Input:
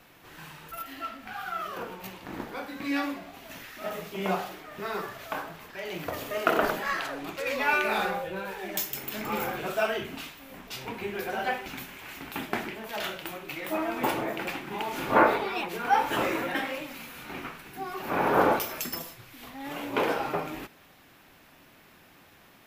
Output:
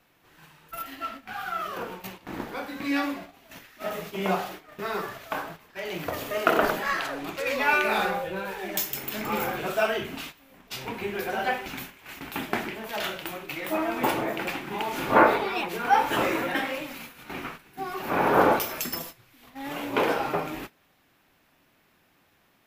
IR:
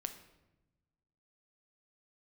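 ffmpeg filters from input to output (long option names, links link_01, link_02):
-af "agate=range=-11dB:threshold=-42dB:ratio=16:detection=peak,volume=2.5dB"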